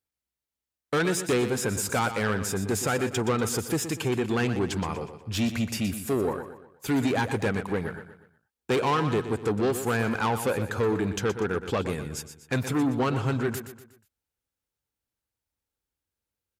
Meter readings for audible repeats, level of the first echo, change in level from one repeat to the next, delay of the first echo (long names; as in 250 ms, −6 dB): 4, −10.5 dB, −7.5 dB, 121 ms